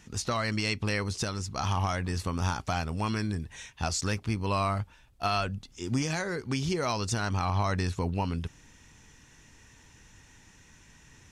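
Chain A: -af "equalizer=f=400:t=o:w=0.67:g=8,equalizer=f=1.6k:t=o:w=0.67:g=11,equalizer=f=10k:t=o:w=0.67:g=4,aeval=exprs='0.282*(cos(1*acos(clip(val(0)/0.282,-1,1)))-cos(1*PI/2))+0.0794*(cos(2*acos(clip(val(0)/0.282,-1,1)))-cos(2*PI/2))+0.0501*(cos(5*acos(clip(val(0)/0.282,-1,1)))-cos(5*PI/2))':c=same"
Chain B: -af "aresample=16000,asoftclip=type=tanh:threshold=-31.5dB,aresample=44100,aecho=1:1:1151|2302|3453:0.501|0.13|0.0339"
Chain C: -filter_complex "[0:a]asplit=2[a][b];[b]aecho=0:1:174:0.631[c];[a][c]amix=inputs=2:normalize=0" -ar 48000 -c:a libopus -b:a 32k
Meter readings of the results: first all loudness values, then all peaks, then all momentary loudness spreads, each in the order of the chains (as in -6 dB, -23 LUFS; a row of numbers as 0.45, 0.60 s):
-23.5, -36.0, -29.5 LUFS; -7.0, -24.5, -13.0 dBFS; 6, 16, 6 LU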